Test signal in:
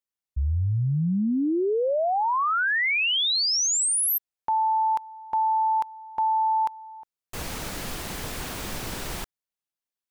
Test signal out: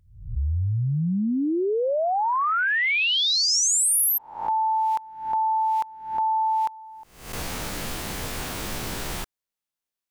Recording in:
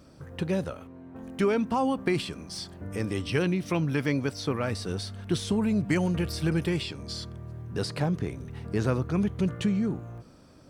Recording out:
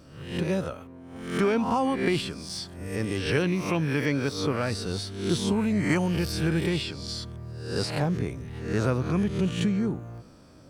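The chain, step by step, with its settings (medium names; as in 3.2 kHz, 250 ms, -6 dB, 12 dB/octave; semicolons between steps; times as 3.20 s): reverse spectral sustain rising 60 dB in 0.60 s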